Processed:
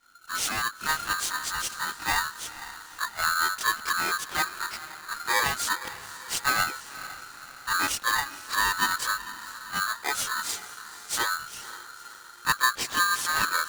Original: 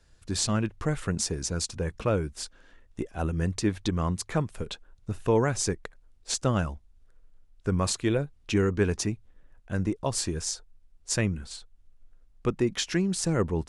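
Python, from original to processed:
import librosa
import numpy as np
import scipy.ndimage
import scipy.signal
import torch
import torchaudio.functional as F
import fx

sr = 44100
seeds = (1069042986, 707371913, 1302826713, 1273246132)

p1 = fx.chorus_voices(x, sr, voices=2, hz=0.16, base_ms=24, depth_ms=2.7, mix_pct=65)
p2 = p1 + fx.echo_diffused(p1, sr, ms=498, feedback_pct=53, wet_db=-14, dry=0)
p3 = p2 * np.sign(np.sin(2.0 * np.pi * 1400.0 * np.arange(len(p2)) / sr))
y = p3 * librosa.db_to_amplitude(2.5)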